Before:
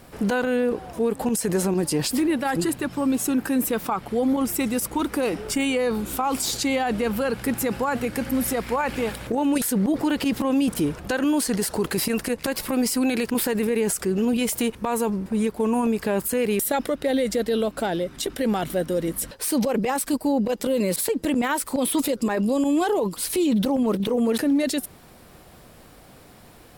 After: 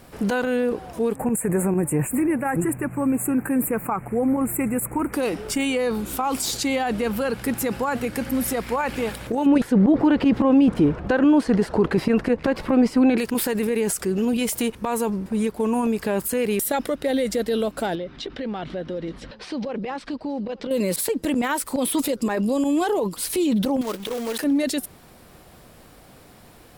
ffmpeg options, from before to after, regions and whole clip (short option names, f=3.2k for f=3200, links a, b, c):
-filter_complex "[0:a]asettb=1/sr,asplit=3[a][b][c];[a]atrim=end=1.164[d];[b]atrim=start=1.16:end=5.13,asetpts=PTS-STARTPTS,afade=t=in:d=0.004:c=qsin,afade=t=out:st=3.966:d=0.004:c=qsin,asuperstop=centerf=4400:order=12:qfactor=0.9,equalizer=f=130:w=2.3:g=8[e];[c]atrim=start=5.126[f];[d][e]acrossfade=d=0.004:c1=hsin:c2=qsin[g];[g][f]acrossfade=d=0.004:c1=qsin:c2=hsin,asettb=1/sr,asplit=3[h][i][j];[h]atrim=end=9.464[k];[i]atrim=start=9.46:end=13.18,asetpts=PTS-STARTPTS,afade=t=in:d=0.004:c=qsin,afade=t=out:st=3.716:d=0.004:c=qsin,acontrast=50,lowpass=f=1.6k:p=1,aemphasis=mode=reproduction:type=50kf[l];[j]atrim=start=13.176[m];[k][l]acrossfade=d=0.004:c1=hsin:c2=qsin[n];[n][m]acrossfade=d=0.004:c1=qsin:c2=hsin,asettb=1/sr,asplit=3[o][p][q];[o]atrim=end=17.954[r];[p]atrim=start=17.95:end=20.71,asetpts=PTS-STARTPTS,afade=t=in:d=0.004:c=qsin,afade=t=out:st=2.756:d=0.004:c=qsin,lowpass=f=4.5k:w=0.5412,lowpass=f=4.5k:w=1.3066,acompressor=threshold=-28dB:ratio=2.5:attack=3.2:release=140:knee=1:detection=peak,aecho=1:1:876:0.0708,atrim=end_sample=121716[s];[q]atrim=start=20.706[t];[r][s]acrossfade=d=0.004:c1=hsin:c2=qsin[u];[u][t]acrossfade=d=0.004:c1=qsin:c2=hsin,asettb=1/sr,asplit=3[v][w][x];[v]atrim=end=23.814[y];[w]atrim=start=23.81:end=24.44,asetpts=PTS-STARTPTS,afade=t=in:d=0.004:c=qsin,afade=t=out:st=0.626:d=0.004:c=qsin,equalizer=f=130:t=o:w=2.8:g=-14,acrusher=bits=2:mode=log:mix=0:aa=0.000001[z];[x]atrim=start=24.436[aa];[y][z]acrossfade=d=0.004:c1=hsin:c2=qsin[ab];[ab][aa]acrossfade=d=0.004:c1=qsin:c2=hsin"